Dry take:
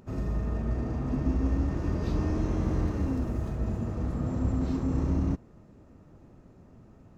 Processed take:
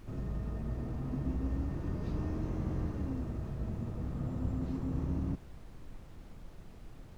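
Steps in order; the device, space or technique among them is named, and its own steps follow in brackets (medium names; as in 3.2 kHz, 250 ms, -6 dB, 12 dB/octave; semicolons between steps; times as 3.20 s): car interior (peaking EQ 140 Hz +4.5 dB; treble shelf 4.6 kHz -7 dB; brown noise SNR 11 dB); trim -8.5 dB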